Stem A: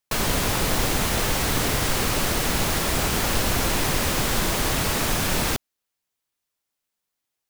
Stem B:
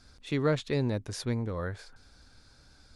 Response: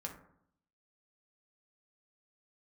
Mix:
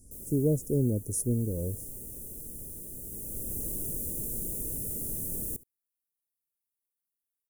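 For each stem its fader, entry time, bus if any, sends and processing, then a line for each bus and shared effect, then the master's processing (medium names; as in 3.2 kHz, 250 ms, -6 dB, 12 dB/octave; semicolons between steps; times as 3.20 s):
1.07 s -22 dB -> 1.67 s -14 dB, 0.00 s, no send, echo send -21.5 dB, auto duck -8 dB, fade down 1.35 s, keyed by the second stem
+3.0 dB, 0.00 s, no send, no echo send, treble shelf 6 kHz +7.5 dB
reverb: none
echo: delay 71 ms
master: inverse Chebyshev band-stop 1.6–3.4 kHz, stop band 80 dB; resonant high shelf 4.2 kHz +10 dB, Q 3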